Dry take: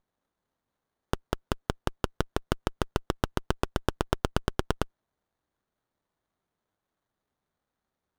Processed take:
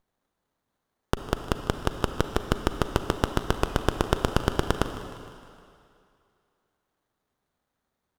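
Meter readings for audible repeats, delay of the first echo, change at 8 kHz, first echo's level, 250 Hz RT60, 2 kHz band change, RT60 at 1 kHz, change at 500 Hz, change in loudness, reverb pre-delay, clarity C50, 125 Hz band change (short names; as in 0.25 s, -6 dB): 4, 0.154 s, +4.0 dB, -17.0 dB, 2.2 s, +4.0 dB, 2.6 s, +4.5 dB, +4.0 dB, 35 ms, 7.5 dB, +4.0 dB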